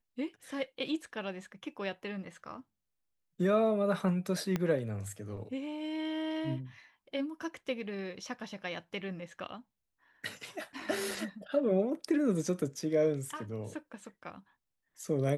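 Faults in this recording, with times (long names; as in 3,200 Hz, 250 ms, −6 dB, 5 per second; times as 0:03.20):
0:04.56: click −18 dBFS
0:11.11: drop-out 3.3 ms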